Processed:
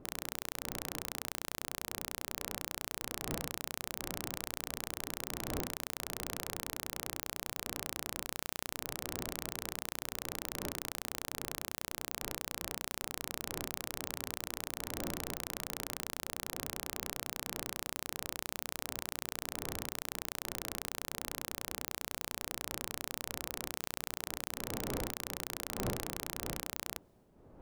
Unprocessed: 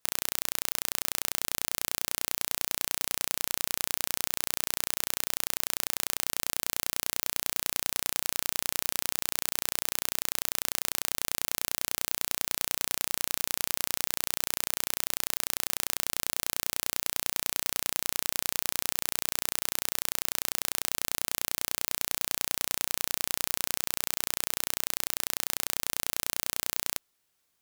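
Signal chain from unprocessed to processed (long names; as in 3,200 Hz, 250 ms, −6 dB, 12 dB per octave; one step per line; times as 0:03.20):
wind on the microphone 450 Hz −48 dBFS
high-shelf EQ 2,100 Hz −10 dB
reversed playback
upward compression, threshold −55 dBFS
reversed playback
level −2 dB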